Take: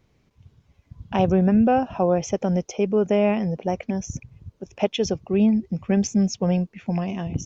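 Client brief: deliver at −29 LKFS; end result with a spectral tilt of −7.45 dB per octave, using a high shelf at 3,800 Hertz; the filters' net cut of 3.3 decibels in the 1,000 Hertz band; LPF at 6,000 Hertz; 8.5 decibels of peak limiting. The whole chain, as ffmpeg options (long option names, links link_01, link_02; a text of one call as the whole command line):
ffmpeg -i in.wav -af "lowpass=6000,equalizer=frequency=1000:width_type=o:gain=-5,highshelf=frequency=3800:gain=-3,volume=-2.5dB,alimiter=limit=-19dB:level=0:latency=1" out.wav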